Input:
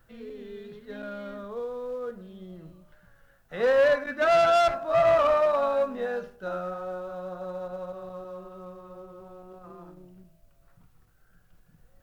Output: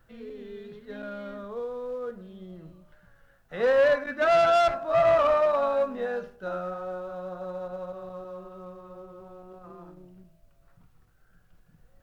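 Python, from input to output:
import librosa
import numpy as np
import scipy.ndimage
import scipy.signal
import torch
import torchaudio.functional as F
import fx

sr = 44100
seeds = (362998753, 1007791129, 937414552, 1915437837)

y = fx.high_shelf(x, sr, hz=6500.0, db=-5.0)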